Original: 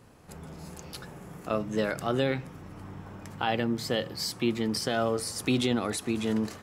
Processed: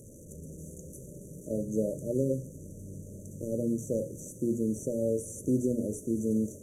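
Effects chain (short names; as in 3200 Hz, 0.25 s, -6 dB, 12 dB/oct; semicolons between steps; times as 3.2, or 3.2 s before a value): delta modulation 64 kbps, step -41.5 dBFS; brick-wall FIR band-stop 630–5800 Hz; notches 60/120/180/240/300/360/420/480/540 Hz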